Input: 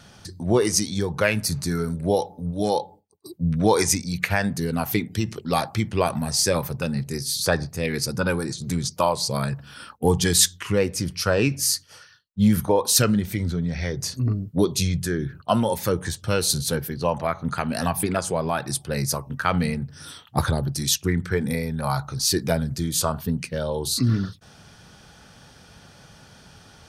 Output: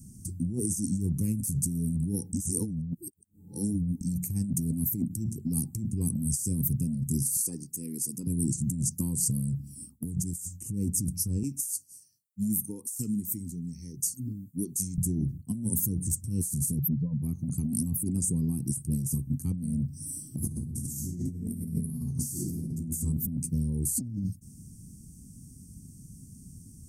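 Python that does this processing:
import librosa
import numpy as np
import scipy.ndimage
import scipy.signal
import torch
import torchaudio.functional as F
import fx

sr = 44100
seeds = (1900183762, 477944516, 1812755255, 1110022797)

y = fx.highpass(x, sr, hz=410.0, slope=12, at=(7.37, 8.27))
y = fx.highpass(y, sr, hz=890.0, slope=6, at=(11.43, 14.98))
y = fx.spec_expand(y, sr, power=2.5, at=(16.78, 17.22), fade=0.02)
y = fx.reverb_throw(y, sr, start_s=20.08, length_s=2.57, rt60_s=1.7, drr_db=-5.5)
y = fx.edit(y, sr, fx.reverse_span(start_s=2.33, length_s=1.68), tone=tone)
y = scipy.signal.sosfilt(scipy.signal.ellip(3, 1.0, 40, [260.0, 7800.0], 'bandstop', fs=sr, output='sos'), y)
y = fx.high_shelf(y, sr, hz=5000.0, db=4.5)
y = fx.over_compress(y, sr, threshold_db=-30.0, ratio=-1.0)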